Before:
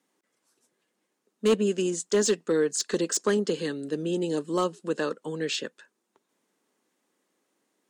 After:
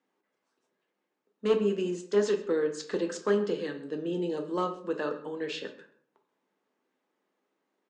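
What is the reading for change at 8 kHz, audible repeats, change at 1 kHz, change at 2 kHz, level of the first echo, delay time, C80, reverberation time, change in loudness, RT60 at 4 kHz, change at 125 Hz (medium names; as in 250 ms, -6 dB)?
-16.0 dB, 1, -1.5 dB, -4.0 dB, -20.5 dB, 131 ms, 13.5 dB, 0.60 s, -3.5 dB, 0.40 s, -4.5 dB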